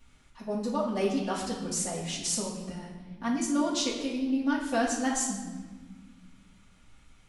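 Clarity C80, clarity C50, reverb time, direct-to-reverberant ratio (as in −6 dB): 6.5 dB, 3.5 dB, 1.5 s, −8.5 dB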